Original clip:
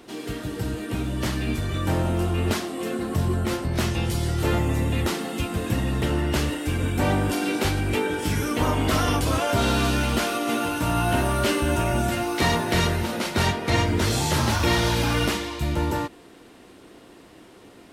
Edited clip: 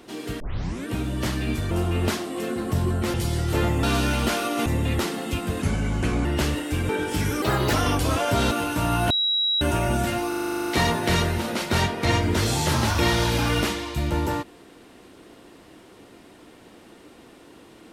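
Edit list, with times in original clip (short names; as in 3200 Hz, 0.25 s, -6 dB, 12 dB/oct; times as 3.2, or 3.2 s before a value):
0.4 tape start 0.47 s
1.71–2.14 cut
3.57–4.04 cut
5.69–6.2 speed 81%
6.84–8 cut
8.53–8.95 speed 134%
9.73–10.56 move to 4.73
11.15–11.66 bleep 3870 Hz -19.5 dBFS
12.33 stutter 0.04 s, 11 plays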